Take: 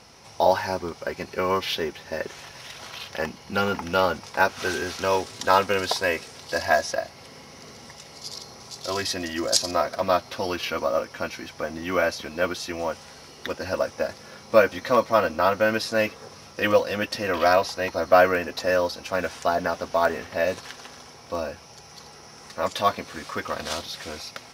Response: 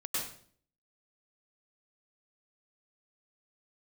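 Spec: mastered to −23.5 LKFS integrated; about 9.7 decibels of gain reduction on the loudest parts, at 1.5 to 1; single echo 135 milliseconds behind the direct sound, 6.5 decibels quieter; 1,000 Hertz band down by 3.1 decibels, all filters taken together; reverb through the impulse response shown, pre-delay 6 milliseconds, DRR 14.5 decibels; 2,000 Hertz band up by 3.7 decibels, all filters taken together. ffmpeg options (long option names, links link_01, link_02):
-filter_complex "[0:a]equalizer=frequency=1000:width_type=o:gain=-7,equalizer=frequency=2000:width_type=o:gain=8,acompressor=threshold=-40dB:ratio=1.5,aecho=1:1:135:0.473,asplit=2[link_01][link_02];[1:a]atrim=start_sample=2205,adelay=6[link_03];[link_02][link_03]afir=irnorm=-1:irlink=0,volume=-18.5dB[link_04];[link_01][link_04]amix=inputs=2:normalize=0,volume=8.5dB"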